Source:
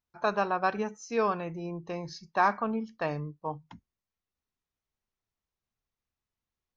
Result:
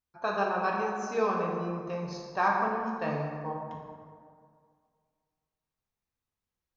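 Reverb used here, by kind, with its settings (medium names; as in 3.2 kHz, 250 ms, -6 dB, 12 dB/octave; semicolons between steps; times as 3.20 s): plate-style reverb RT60 2.1 s, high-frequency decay 0.5×, DRR -2 dB; trim -4 dB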